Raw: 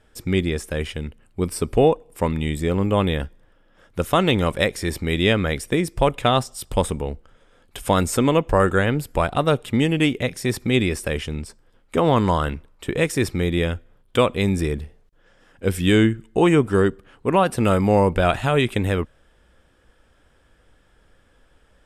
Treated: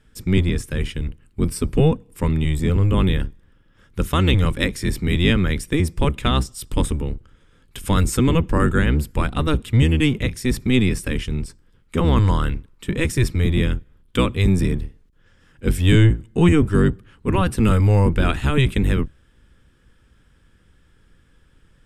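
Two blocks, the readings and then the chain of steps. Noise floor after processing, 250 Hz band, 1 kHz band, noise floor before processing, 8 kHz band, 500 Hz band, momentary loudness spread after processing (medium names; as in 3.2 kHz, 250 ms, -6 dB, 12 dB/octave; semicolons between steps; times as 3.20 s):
-57 dBFS, +1.5 dB, -5.0 dB, -59 dBFS, 0.0 dB, -4.5 dB, 11 LU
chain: octave divider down 1 oct, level +4 dB; peaking EQ 670 Hz -11.5 dB 0.86 oct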